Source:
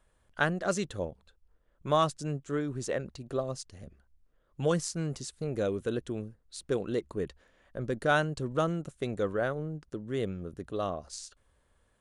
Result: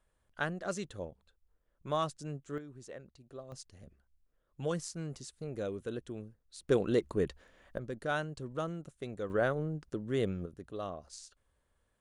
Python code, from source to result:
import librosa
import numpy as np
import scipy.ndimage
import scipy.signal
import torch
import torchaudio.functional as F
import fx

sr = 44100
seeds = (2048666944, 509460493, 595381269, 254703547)

y = fx.gain(x, sr, db=fx.steps((0.0, -7.0), (2.58, -15.0), (3.52, -7.0), (6.68, 2.5), (7.78, -8.0), (9.3, 0.5), (10.46, -7.0)))